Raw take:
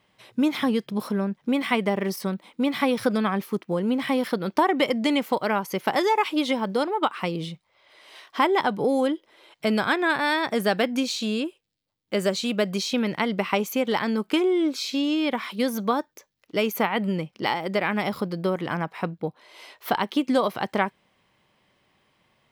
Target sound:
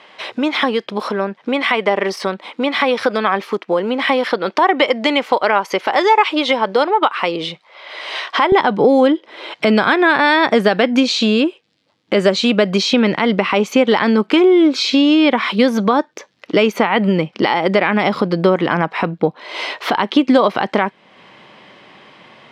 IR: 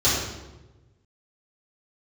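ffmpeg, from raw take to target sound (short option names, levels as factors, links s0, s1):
-af "acompressor=threshold=0.00794:ratio=2,asetnsamples=n=441:p=0,asendcmd='8.52 highpass f 190',highpass=440,lowpass=4200,alimiter=level_in=16.8:limit=0.891:release=50:level=0:latency=1,volume=0.891"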